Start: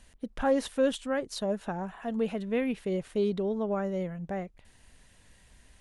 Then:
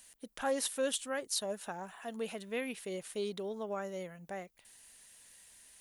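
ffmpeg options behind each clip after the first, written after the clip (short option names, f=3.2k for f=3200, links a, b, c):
-af "aemphasis=mode=production:type=riaa,volume=-5dB"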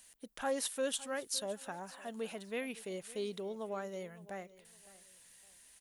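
-af "aecho=1:1:560|1120:0.112|0.0314,volume=-2dB"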